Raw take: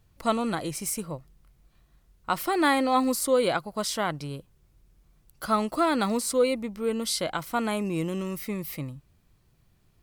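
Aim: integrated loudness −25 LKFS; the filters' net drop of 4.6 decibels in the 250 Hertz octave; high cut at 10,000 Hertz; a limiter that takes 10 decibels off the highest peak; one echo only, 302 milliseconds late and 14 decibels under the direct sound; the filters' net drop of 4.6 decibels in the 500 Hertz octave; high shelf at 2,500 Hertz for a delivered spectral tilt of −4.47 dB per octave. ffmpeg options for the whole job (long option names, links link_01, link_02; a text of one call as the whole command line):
ffmpeg -i in.wav -af "lowpass=10000,equalizer=frequency=250:width_type=o:gain=-4.5,equalizer=frequency=500:width_type=o:gain=-4,highshelf=frequency=2500:gain=-6.5,alimiter=limit=-23.5dB:level=0:latency=1,aecho=1:1:302:0.2,volume=9dB" out.wav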